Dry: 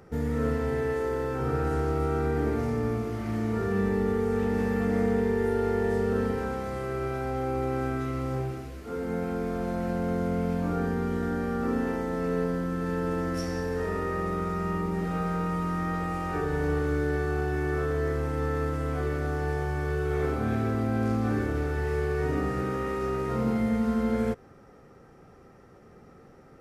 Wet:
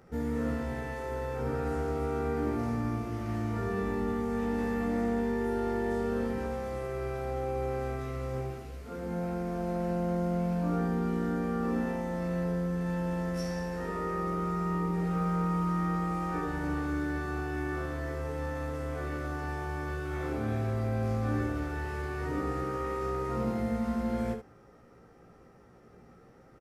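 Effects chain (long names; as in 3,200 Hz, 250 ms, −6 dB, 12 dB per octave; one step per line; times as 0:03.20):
ambience of single reflections 17 ms −3.5 dB, 74 ms −7.5 dB
level −5.5 dB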